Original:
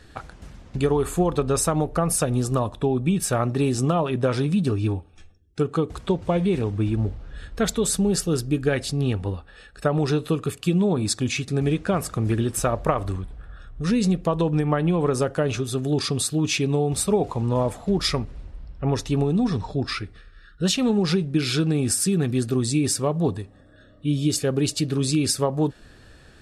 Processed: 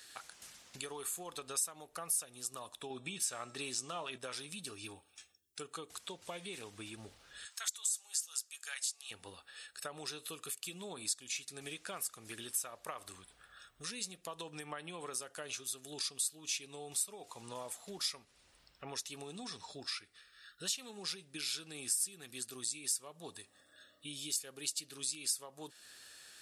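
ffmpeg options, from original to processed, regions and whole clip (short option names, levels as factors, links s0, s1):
-filter_complex "[0:a]asettb=1/sr,asplit=3[s0][s1][s2];[s0]atrim=end=2.904[s3];[s1]atrim=start=2.9:end=4.18,asetpts=PTS-STARTPTS,afade=t=in:d=0.004:c=qsin,afade=t=out:st=1.276:d=0.004:c=qsin,lowpass=7500,acontrast=26,bandreject=f=327.8:t=h:w=4,bandreject=f=655.6:t=h:w=4,bandreject=f=983.4:t=h:w=4,bandreject=f=1311.2:t=h:w=4,bandreject=f=1639:t=h:w=4,bandreject=f=1966.8:t=h:w=4,bandreject=f=2294.6:t=h:w=4,bandreject=f=2622.4:t=h:w=4,bandreject=f=2950.2:t=h:w=4,bandreject=f=3278:t=h:w=4,bandreject=f=3605.8:t=h:w=4,bandreject=f=3933.6:t=h:w=4,bandreject=f=4261.4:t=h:w=4,bandreject=f=4589.2:t=h:w=4,bandreject=f=4917:t=h:w=4,bandreject=f=5244.8:t=h:w=4,bandreject=f=5572.6:t=h:w=4,bandreject=f=5900.4:t=h:w=4,bandreject=f=6228.2:t=h:w=4,bandreject=f=6556:t=h:w=4,bandreject=f=6883.8:t=h:w=4,bandreject=f=7211.6:t=h:w=4,bandreject=f=7539.4:t=h:w=4,bandreject=f=7867.2:t=h:w=4,bandreject=f=8195:t=h:w=4,bandreject=f=8522.8:t=h:w=4[s4];[s2]atrim=start=4.176[s5];[s3][s4]acrossfade=d=0.004:c1=hsin:c2=qsin[s6];[s6][s5]acrossfade=d=0.004:c1=qsin:c2=hsin,asettb=1/sr,asplit=3[s7][s8][s9];[s7]atrim=end=7.454[s10];[s8]atrim=start=7.45:end=9.11,asetpts=PTS-STARTPTS,afade=t=in:d=0.004:c=qsin,afade=t=out:st=1.656:d=0.004:c=qsin,highpass=f=870:w=0.5412,highpass=f=870:w=1.3066,equalizer=f=7100:w=1.3:g=9.5,acompressor=threshold=0.0794:ratio=3:attack=3.2:release=140:knee=1:detection=peak[s11];[s9]atrim=start=9.106[s12];[s10][s11]acrossfade=d=0.004:c1=hsin:c2=qsin[s13];[s13][s12]acrossfade=d=0.004:c1=qsin:c2=hsin,aderivative,acompressor=threshold=0.002:ratio=2,volume=2.24"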